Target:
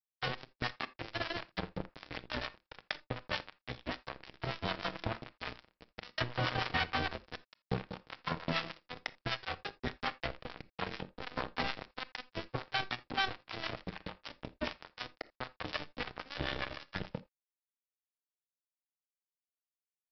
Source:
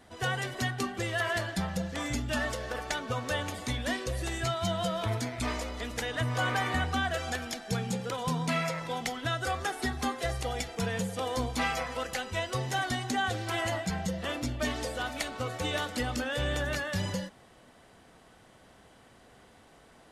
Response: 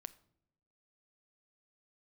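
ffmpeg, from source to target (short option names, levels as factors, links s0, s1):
-filter_complex "[0:a]acrossover=split=4000[s0][s1];[s1]acompressor=threshold=0.002:ratio=4:attack=1:release=60[s2];[s0][s2]amix=inputs=2:normalize=0,aresample=11025,acrusher=bits=3:mix=0:aa=0.5,aresample=44100,acrossover=split=660[s3][s4];[s3]aeval=exprs='val(0)*(1-0.7/2+0.7/2*cos(2*PI*6.7*n/s))':c=same[s5];[s4]aeval=exprs='val(0)*(1-0.7/2-0.7/2*cos(2*PI*6.7*n/s))':c=same[s6];[s5][s6]amix=inputs=2:normalize=0[s7];[1:a]atrim=start_sample=2205,atrim=end_sample=3969[s8];[s7][s8]afir=irnorm=-1:irlink=0,volume=2.24"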